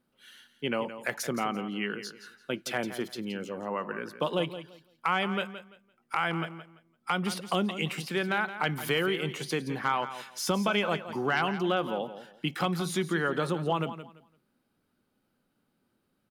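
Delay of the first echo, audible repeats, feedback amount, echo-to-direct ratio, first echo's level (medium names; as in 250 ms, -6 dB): 170 ms, 2, 23%, -12.0 dB, -12.0 dB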